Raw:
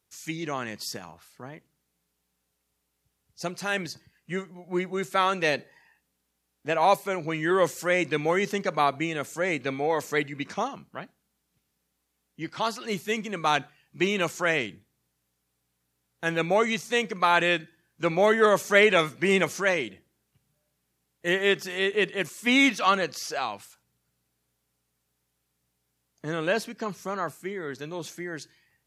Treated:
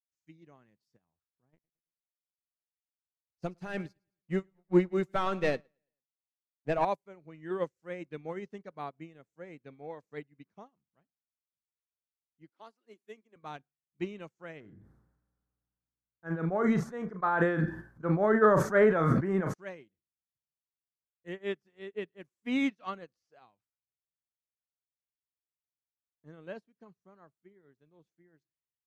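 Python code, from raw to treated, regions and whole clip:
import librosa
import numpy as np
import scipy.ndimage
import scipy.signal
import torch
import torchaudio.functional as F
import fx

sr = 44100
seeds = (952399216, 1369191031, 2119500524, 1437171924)

y = fx.chain(x, sr, fx.leveller(passes=2),
    fx.echo_feedback(ms=110, feedback_pct=47, wet_db=-15.5), at=(1.53, 6.85))
y = fx.chain(y, sr, fx.steep_highpass(hz=240.0, slope=36),
    fx.peak_eq(hz=10000.0, db=5.5, octaves=0.67), at=(12.49, 13.36))
y = fx.chain(y, sr, fx.high_shelf_res(hz=2000.0, db=-9.5, q=3.0),
    fx.doubler(ms=37.0, db=-12.5),
    fx.sustainer(db_per_s=23.0), at=(14.6, 19.54))
y = fx.tilt_eq(y, sr, slope=-3.0)
y = fx.upward_expand(y, sr, threshold_db=-37.0, expansion=2.5)
y = F.gain(torch.from_numpy(y), -5.5).numpy()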